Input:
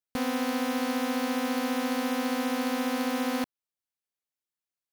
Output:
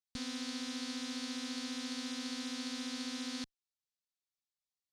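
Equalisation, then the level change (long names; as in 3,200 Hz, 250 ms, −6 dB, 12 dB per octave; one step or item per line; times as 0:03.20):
high-frequency loss of the air 75 metres
guitar amp tone stack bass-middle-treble 6-0-2
flat-topped bell 5,800 Hz +9.5 dB
+8.0 dB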